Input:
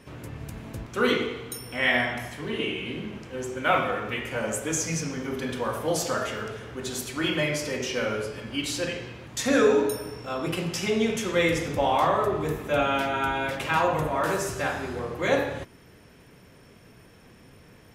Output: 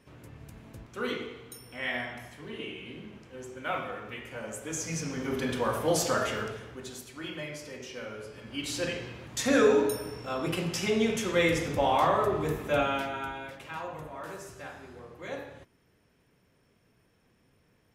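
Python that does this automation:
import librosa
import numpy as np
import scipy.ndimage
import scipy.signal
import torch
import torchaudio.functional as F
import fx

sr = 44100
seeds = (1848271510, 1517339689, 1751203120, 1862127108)

y = fx.gain(x, sr, db=fx.line((4.55, -10.0), (5.34, 0.0), (6.4, 0.0), (7.05, -12.5), (8.15, -12.5), (8.86, -2.0), (12.75, -2.0), (13.6, -15.0)))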